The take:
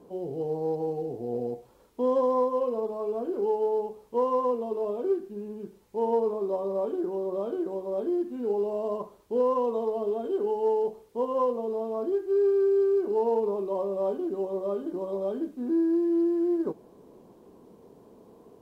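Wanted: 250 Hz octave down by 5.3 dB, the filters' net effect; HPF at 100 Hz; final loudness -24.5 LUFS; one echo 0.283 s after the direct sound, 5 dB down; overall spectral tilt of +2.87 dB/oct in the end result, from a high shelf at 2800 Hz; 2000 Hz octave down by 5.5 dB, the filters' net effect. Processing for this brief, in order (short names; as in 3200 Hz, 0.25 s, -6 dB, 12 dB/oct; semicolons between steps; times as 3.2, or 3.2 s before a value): HPF 100 Hz; bell 250 Hz -8.5 dB; bell 2000 Hz -4.5 dB; high shelf 2800 Hz -8.5 dB; echo 0.283 s -5 dB; gain +6 dB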